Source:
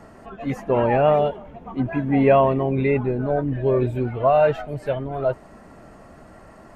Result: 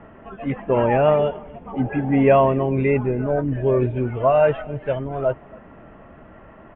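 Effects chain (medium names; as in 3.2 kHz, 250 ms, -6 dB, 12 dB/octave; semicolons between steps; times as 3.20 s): steep low-pass 3.3 kHz 72 dB/octave; band-stop 740 Hz, Q 19; on a send: delay 273 ms -23.5 dB; on the sum: spectral replace 1.76–2.07 s, 380–1100 Hz after; trim +1 dB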